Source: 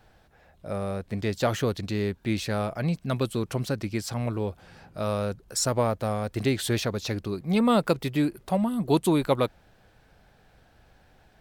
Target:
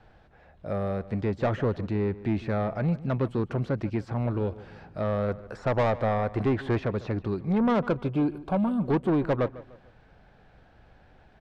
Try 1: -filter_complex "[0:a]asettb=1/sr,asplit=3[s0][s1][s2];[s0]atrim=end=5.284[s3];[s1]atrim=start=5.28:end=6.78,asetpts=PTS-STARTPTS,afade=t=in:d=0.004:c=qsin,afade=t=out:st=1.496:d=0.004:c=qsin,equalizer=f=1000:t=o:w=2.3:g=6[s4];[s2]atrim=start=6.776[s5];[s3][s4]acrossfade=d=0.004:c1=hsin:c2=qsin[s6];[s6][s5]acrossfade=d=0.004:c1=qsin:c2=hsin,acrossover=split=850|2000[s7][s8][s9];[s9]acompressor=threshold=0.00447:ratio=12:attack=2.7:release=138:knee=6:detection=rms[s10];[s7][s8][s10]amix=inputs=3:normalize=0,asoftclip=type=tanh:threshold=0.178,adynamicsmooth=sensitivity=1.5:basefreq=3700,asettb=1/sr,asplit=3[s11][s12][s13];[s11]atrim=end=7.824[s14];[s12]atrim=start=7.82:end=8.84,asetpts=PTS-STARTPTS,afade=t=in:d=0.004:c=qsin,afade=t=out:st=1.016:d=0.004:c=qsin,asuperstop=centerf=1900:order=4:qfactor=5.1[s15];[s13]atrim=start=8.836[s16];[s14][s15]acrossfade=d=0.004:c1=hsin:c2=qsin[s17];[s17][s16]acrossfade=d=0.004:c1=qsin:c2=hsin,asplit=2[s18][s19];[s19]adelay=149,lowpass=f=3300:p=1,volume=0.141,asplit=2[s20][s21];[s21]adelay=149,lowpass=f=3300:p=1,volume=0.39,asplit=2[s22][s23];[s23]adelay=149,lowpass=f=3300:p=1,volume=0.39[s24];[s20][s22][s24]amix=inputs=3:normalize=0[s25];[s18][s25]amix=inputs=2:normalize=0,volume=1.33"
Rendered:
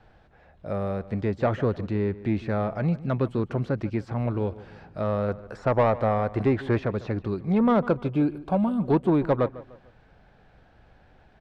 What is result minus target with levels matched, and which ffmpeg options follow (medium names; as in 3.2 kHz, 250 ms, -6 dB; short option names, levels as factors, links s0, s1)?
saturation: distortion -7 dB
-filter_complex "[0:a]asettb=1/sr,asplit=3[s0][s1][s2];[s0]atrim=end=5.284[s3];[s1]atrim=start=5.28:end=6.78,asetpts=PTS-STARTPTS,afade=t=in:d=0.004:c=qsin,afade=t=out:st=1.496:d=0.004:c=qsin,equalizer=f=1000:t=o:w=2.3:g=6[s4];[s2]atrim=start=6.776[s5];[s3][s4]acrossfade=d=0.004:c1=hsin:c2=qsin[s6];[s6][s5]acrossfade=d=0.004:c1=qsin:c2=hsin,acrossover=split=850|2000[s7][s8][s9];[s9]acompressor=threshold=0.00447:ratio=12:attack=2.7:release=138:knee=6:detection=rms[s10];[s7][s8][s10]amix=inputs=3:normalize=0,asoftclip=type=tanh:threshold=0.0841,adynamicsmooth=sensitivity=1.5:basefreq=3700,asettb=1/sr,asplit=3[s11][s12][s13];[s11]atrim=end=7.824[s14];[s12]atrim=start=7.82:end=8.84,asetpts=PTS-STARTPTS,afade=t=in:d=0.004:c=qsin,afade=t=out:st=1.016:d=0.004:c=qsin,asuperstop=centerf=1900:order=4:qfactor=5.1[s15];[s13]atrim=start=8.836[s16];[s14][s15]acrossfade=d=0.004:c1=hsin:c2=qsin[s17];[s17][s16]acrossfade=d=0.004:c1=qsin:c2=hsin,asplit=2[s18][s19];[s19]adelay=149,lowpass=f=3300:p=1,volume=0.141,asplit=2[s20][s21];[s21]adelay=149,lowpass=f=3300:p=1,volume=0.39,asplit=2[s22][s23];[s23]adelay=149,lowpass=f=3300:p=1,volume=0.39[s24];[s20][s22][s24]amix=inputs=3:normalize=0[s25];[s18][s25]amix=inputs=2:normalize=0,volume=1.33"